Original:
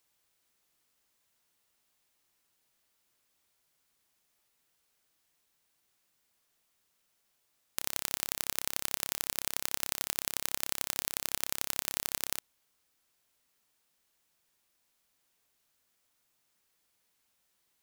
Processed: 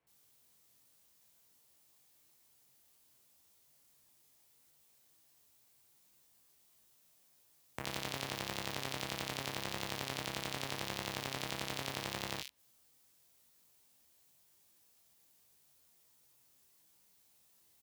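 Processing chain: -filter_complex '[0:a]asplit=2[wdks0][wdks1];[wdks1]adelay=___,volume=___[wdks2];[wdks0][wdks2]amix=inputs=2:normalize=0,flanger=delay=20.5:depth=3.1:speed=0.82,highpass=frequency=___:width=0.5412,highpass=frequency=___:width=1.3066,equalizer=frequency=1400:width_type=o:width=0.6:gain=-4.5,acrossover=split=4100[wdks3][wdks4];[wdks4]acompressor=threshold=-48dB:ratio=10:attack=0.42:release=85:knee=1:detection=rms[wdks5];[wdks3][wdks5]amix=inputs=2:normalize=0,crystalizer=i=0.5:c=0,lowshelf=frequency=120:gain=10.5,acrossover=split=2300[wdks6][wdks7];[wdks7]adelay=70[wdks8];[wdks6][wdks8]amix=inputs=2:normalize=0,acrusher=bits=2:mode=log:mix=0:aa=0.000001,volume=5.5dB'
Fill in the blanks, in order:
15, -7dB, 72, 72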